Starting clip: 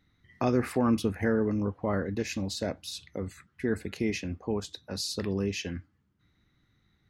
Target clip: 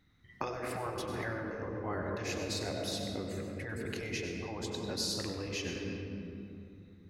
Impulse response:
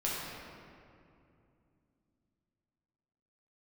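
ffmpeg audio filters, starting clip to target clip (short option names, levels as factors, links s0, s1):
-filter_complex "[0:a]asplit=2[s0][s1];[1:a]atrim=start_sample=2205,adelay=96[s2];[s1][s2]afir=irnorm=-1:irlink=0,volume=0.335[s3];[s0][s3]amix=inputs=2:normalize=0,acompressor=threshold=0.0282:ratio=2,afftfilt=real='re*lt(hypot(re,im),0.126)':imag='im*lt(hypot(re,im),0.126)':win_size=1024:overlap=0.75"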